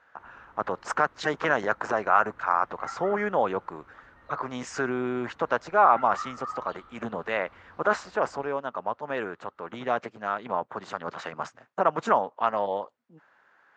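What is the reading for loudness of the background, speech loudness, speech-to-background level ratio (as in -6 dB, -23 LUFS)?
-41.0 LUFS, -28.0 LUFS, 13.0 dB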